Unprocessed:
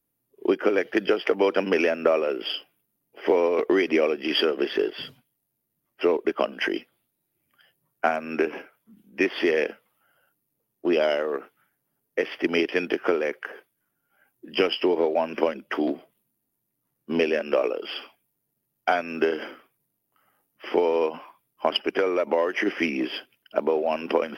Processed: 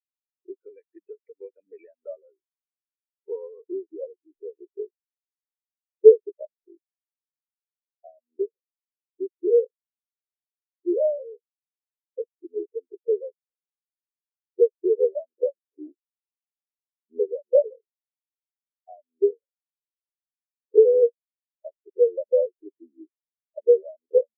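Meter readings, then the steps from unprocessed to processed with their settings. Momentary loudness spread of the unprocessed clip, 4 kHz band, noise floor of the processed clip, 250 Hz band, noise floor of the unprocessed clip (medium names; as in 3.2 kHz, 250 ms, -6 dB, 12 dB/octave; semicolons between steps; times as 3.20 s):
10 LU, under -40 dB, under -85 dBFS, -11.0 dB, -78 dBFS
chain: partial rectifier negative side -3 dB; low-pass sweep 2.3 kHz -> 540 Hz, 1.61–5.32 s; spectral contrast expander 4:1; trim +2 dB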